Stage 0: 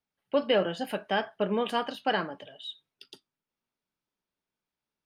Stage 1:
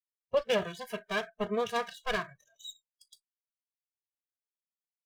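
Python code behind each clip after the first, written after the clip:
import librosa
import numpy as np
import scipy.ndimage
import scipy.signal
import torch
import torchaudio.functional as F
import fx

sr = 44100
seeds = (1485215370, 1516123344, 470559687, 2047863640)

y = fx.lower_of_two(x, sr, delay_ms=1.8)
y = fx.noise_reduce_blind(y, sr, reduce_db=29)
y = y * librosa.db_to_amplitude(-2.5)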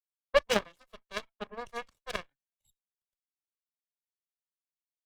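y = fx.cheby_harmonics(x, sr, harmonics=(2, 3, 5, 8), levels_db=(-23, -9, -39, -30), full_scale_db=-17.0)
y = fx.band_widen(y, sr, depth_pct=40)
y = y * librosa.db_to_amplitude(5.0)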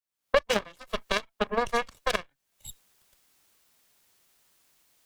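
y = fx.recorder_agc(x, sr, target_db=-15.0, rise_db_per_s=57.0, max_gain_db=30)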